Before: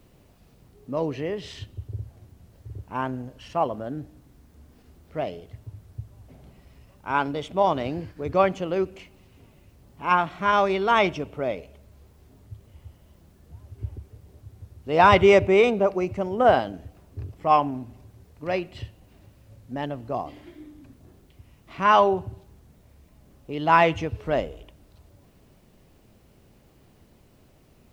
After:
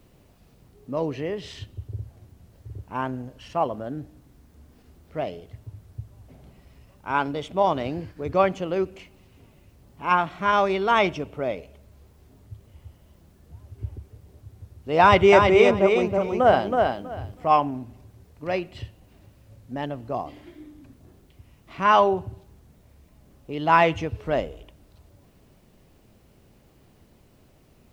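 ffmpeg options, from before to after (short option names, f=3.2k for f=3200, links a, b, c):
-filter_complex "[0:a]asettb=1/sr,asplit=3[a][b][c];[a]atrim=end=15.004[d];[b]atrim=start=15:end=17.48,asetpts=PTS-STARTPTS,afade=t=in:d=0.004:c=qsin,afade=t=out:st=2.476:d=0.004:c=qsin,aecho=1:1:323|646|969:0.631|0.114|0.0204,atrim=end_sample=109368[e];[c]atrim=start=17.476[f];[d][e]acrossfade=d=0.004:c1=hsin:c2=qsin[g];[g][f]acrossfade=d=0.004:c1=qsin:c2=hsin"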